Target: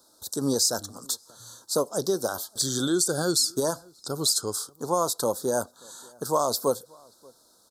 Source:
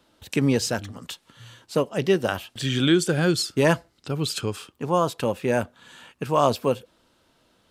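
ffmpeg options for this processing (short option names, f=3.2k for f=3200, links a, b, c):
-filter_complex "[0:a]bass=f=250:g=-10,treble=f=4k:g=14,alimiter=limit=-11.5dB:level=0:latency=1:release=141,asuperstop=centerf=2400:order=8:qfactor=1,asplit=2[a][b];[b]adelay=583.1,volume=-27dB,highshelf=f=4k:g=-13.1[c];[a][c]amix=inputs=2:normalize=0"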